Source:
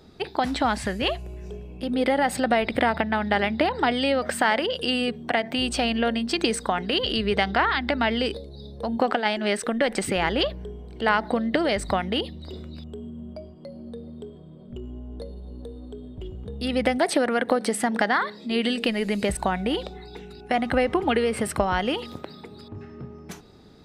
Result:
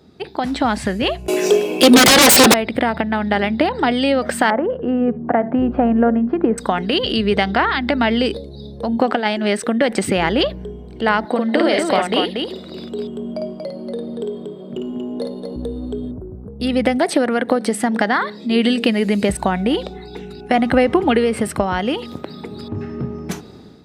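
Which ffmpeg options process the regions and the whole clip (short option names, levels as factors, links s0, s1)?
-filter_complex "[0:a]asettb=1/sr,asplit=3[s0][s1][s2];[s0]atrim=end=1.284[s3];[s1]atrim=start=1.28:end=2.54,asetpts=PTS-STARTPTS,afade=t=in:d=0.004:c=qsin,afade=t=out:st=1.256:d=0.004:c=qsin,highpass=f=310:w=0.5412,highpass=f=310:w=1.3066,highshelf=f=2800:g=11,aeval=exprs='0.422*sin(PI/2*8.91*val(0)/0.422)':c=same[s4];[s2]atrim=start=2.536[s5];[s3][s4]acrossfade=d=0.004:c1=hsin:c2=qsin[s6];[s6][s5]acrossfade=d=0.004:c1=qsin:c2=hsin,asettb=1/sr,asplit=3[s7][s8][s9];[s7]atrim=end=4.504[s10];[s8]atrim=start=4.5:end=6.58,asetpts=PTS-STARTPTS,afade=t=in:d=0.004:c=qsin,afade=t=out:st=2.076:d=0.004:c=qsin,lowpass=f=1400:w=0.5412,lowpass=f=1400:w=1.3066,aecho=1:1:73:0.0708,atrim=end_sample=91728[s11];[s9]atrim=start=6.576[s12];[s10][s11]acrossfade=d=0.004:c1=hsin:c2=qsin[s13];[s13][s12]acrossfade=d=0.004:c1=qsin:c2=hsin,asettb=1/sr,asplit=3[s14][s15][s16];[s14]atrim=end=11.254[s17];[s15]atrim=start=11.25:end=15.56,asetpts=PTS-STARTPTS,afade=t=in:d=0.004:c=qsin,afade=t=out:st=4.306:d=0.004:c=qsin,highpass=280,aecho=1:1:53|235:0.668|0.596,atrim=end_sample=190071[s18];[s16]atrim=start=15.556[s19];[s17][s18]acrossfade=d=0.004:c1=hsin:c2=qsin[s20];[s20][s19]acrossfade=d=0.004:c1=qsin:c2=hsin,asettb=1/sr,asplit=3[s21][s22][s23];[s21]atrim=end=16.114[s24];[s22]atrim=start=16.11:end=16.6,asetpts=PTS-STARTPTS,afade=t=in:d=0.004:c=qsin,afade=t=out:st=0.486:d=0.004:c=qsin,acompressor=threshold=0.0126:ratio=5:attack=3.2:release=140:knee=1:detection=peak,asuperstop=centerf=4100:order=20:qfactor=0.51[s25];[s23]atrim=start=16.596[s26];[s24][s25]acrossfade=d=0.004:c1=hsin:c2=qsin[s27];[s27][s26]acrossfade=d=0.004:c1=qsin:c2=hsin,highpass=56,equalizer=f=230:t=o:w=2.1:g=4.5,dynaudnorm=f=220:g=5:m=3.76,volume=0.891"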